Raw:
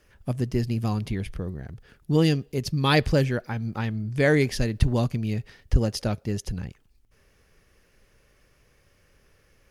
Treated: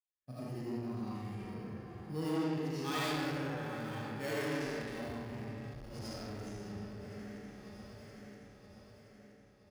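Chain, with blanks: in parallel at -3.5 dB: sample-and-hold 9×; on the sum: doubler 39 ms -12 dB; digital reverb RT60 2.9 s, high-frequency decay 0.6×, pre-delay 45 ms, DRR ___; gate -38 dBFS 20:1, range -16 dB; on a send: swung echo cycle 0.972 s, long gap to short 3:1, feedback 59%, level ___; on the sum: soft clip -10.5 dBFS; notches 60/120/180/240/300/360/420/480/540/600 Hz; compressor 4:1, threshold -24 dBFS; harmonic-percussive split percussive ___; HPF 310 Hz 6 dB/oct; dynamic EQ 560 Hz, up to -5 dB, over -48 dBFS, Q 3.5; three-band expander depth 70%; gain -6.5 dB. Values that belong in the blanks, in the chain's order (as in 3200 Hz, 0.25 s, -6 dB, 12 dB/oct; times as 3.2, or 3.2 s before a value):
-8 dB, -15.5 dB, -16 dB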